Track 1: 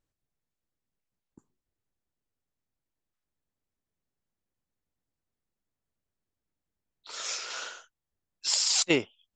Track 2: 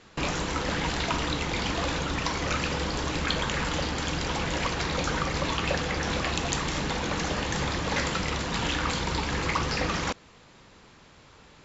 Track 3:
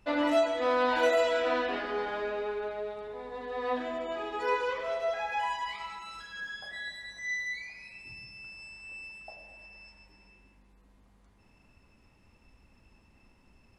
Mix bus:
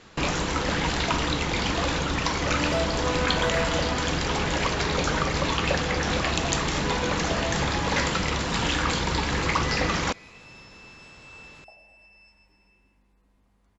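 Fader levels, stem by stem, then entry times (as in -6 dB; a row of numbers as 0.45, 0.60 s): -18.5, +3.0, -3.5 dB; 0.00, 0.00, 2.40 s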